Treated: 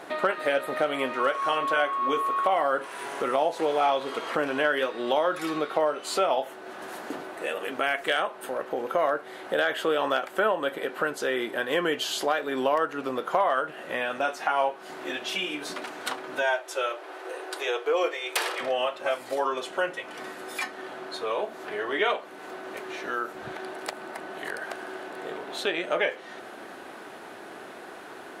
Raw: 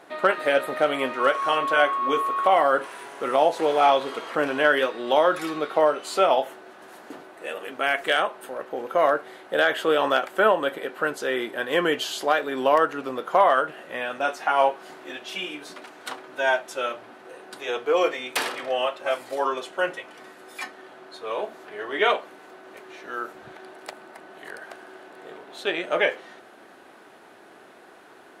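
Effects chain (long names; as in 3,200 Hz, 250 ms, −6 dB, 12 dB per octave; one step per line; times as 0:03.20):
downward compressor 2 to 1, threshold −38 dBFS, peak gain reduction 13.5 dB
0:16.42–0:18.61: linear-phase brick-wall high-pass 300 Hz
level +7 dB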